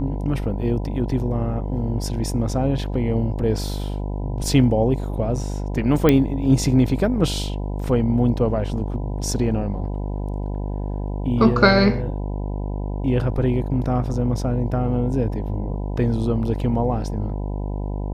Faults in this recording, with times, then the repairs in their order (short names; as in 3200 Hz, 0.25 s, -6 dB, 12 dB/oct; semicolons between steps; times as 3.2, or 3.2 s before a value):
buzz 50 Hz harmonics 20 -26 dBFS
6.09 pop -4 dBFS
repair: de-click; de-hum 50 Hz, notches 20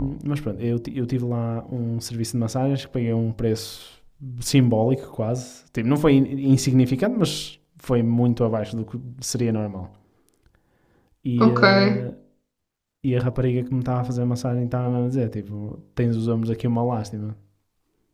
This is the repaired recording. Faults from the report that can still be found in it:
none